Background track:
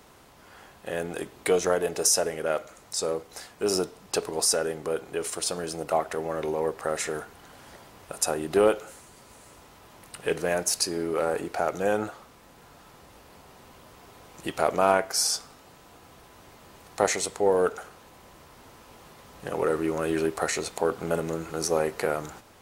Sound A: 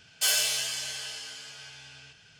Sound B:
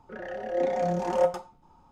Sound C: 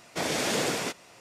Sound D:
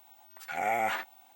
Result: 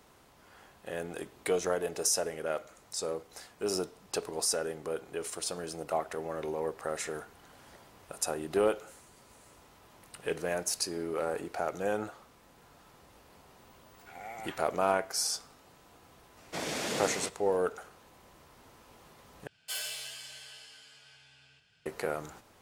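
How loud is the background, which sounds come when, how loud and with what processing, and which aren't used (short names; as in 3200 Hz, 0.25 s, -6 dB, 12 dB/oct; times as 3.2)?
background track -6.5 dB
13.58 add D -15 dB
16.37 add C -6.5 dB
19.47 replace with A -11 dB + bell 6100 Hz -7.5 dB 0.33 oct
not used: B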